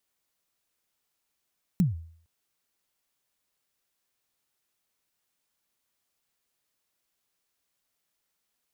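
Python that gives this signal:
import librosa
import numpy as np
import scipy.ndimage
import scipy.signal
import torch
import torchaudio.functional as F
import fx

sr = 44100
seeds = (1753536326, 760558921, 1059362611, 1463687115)

y = fx.drum_kick(sr, seeds[0], length_s=0.46, level_db=-16, start_hz=200.0, end_hz=82.0, sweep_ms=148.0, decay_s=0.55, click=True)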